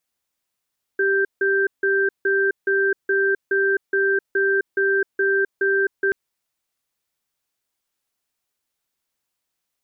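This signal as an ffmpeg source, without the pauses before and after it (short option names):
-f lavfi -i "aevalsrc='0.112*(sin(2*PI*392*t)+sin(2*PI*1570*t))*clip(min(mod(t,0.42),0.26-mod(t,0.42))/0.005,0,1)':d=5.13:s=44100"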